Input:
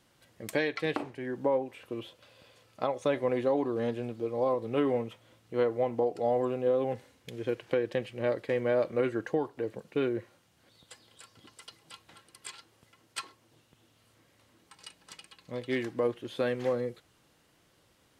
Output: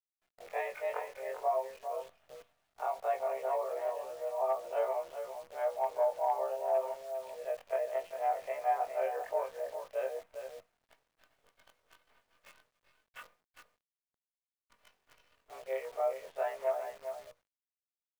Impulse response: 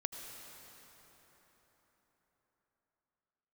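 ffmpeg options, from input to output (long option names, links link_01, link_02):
-filter_complex "[0:a]afftfilt=real='re':imag='-im':win_size=2048:overlap=0.75,agate=range=-33dB:threshold=-58dB:ratio=3:detection=peak,adynamicequalizer=threshold=0.00316:dfrequency=770:dqfactor=2.5:tfrequency=770:tqfactor=2.5:attack=5:release=100:ratio=0.375:range=1.5:mode=boostabove:tftype=bell,acrossover=split=990[link_01][link_02];[link_01]acontrast=30[link_03];[link_02]aeval=exprs='0.0473*(cos(1*acos(clip(val(0)/0.0473,-1,1)))-cos(1*PI/2))+0.00531*(cos(4*acos(clip(val(0)/0.0473,-1,1)))-cos(4*PI/2))':channel_layout=same[link_04];[link_03][link_04]amix=inputs=2:normalize=0,asoftclip=type=hard:threshold=-16.5dB,highpass=frequency=340:width_type=q:width=0.5412,highpass=frequency=340:width_type=q:width=1.307,lowpass=frequency=2700:width_type=q:width=0.5176,lowpass=frequency=2700:width_type=q:width=0.7071,lowpass=frequency=2700:width_type=q:width=1.932,afreqshift=140,aecho=1:1:402:0.376,acrusher=bits=9:dc=4:mix=0:aa=0.000001,volume=-5dB"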